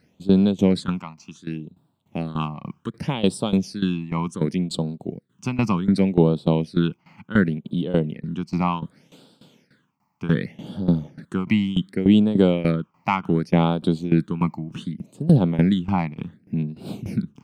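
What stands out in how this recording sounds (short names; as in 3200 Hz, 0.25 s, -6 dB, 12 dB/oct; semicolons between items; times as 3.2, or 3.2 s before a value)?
phasing stages 8, 0.67 Hz, lowest notch 460–2000 Hz; tremolo saw down 3.4 Hz, depth 85%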